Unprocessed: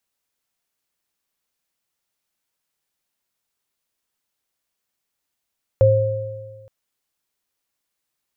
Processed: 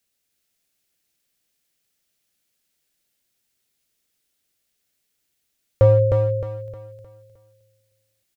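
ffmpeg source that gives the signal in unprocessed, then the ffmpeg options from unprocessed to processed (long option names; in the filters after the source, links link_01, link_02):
-f lavfi -i "aevalsrc='0.224*pow(10,-3*t/1.52)*sin(2*PI*108*t)+0.316*pow(10,-3*t/1.49)*sin(2*PI*532*t)':duration=0.87:sample_rate=44100"
-filter_complex "[0:a]equalizer=frequency=1000:width_type=o:width=1:gain=-11,asplit=2[link_01][link_02];[link_02]asoftclip=type=hard:threshold=-15.5dB,volume=-3dB[link_03];[link_01][link_03]amix=inputs=2:normalize=0,aecho=1:1:309|618|927|1236|1545:0.668|0.254|0.0965|0.0367|0.0139"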